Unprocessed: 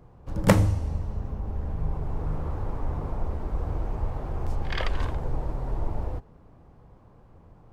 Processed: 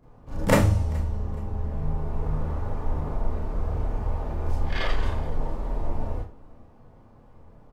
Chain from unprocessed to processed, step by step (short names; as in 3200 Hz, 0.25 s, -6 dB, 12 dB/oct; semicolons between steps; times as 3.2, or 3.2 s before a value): feedback echo 0.423 s, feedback 31%, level -23.5 dB; Schroeder reverb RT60 0.3 s, combs from 26 ms, DRR -7.5 dB; gain -6.5 dB